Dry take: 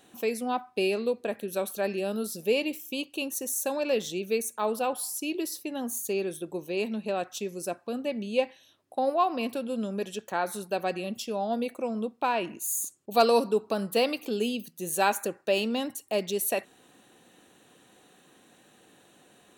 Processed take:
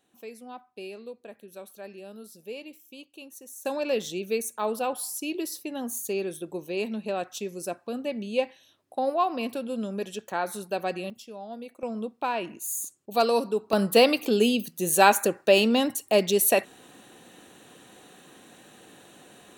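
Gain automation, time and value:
-13 dB
from 3.65 s 0 dB
from 11.1 s -10 dB
from 11.83 s -1.5 dB
from 13.73 s +7 dB

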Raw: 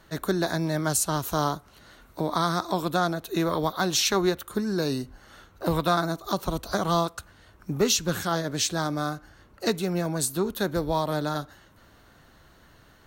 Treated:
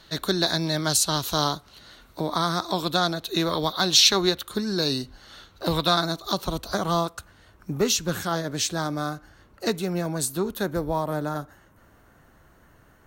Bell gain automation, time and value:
bell 4000 Hz 1 oct
1.33 s +13.5 dB
2.48 s +3.5 dB
2.87 s +11.5 dB
6.12 s +11.5 dB
6.93 s 0 dB
10.53 s 0 dB
10.93 s -11 dB

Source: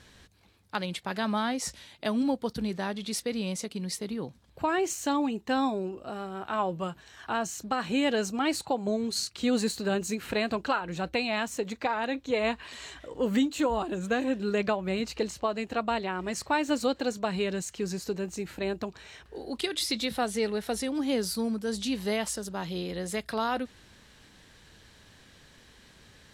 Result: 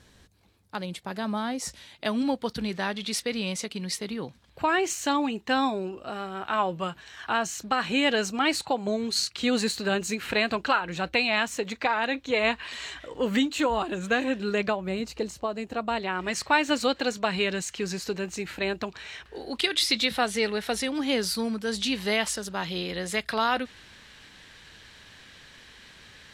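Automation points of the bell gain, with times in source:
bell 2400 Hz 2.6 oct
1.38 s -4 dB
2.3 s +7.5 dB
14.4 s +7.5 dB
15.05 s -3 dB
15.75 s -3 dB
16.24 s +9 dB

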